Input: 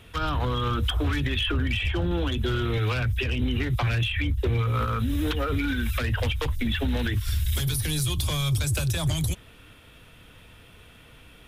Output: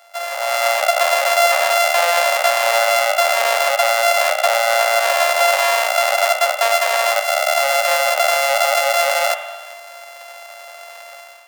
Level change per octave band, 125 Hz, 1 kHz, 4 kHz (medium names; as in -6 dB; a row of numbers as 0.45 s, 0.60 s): under -40 dB, +19.0 dB, +10.0 dB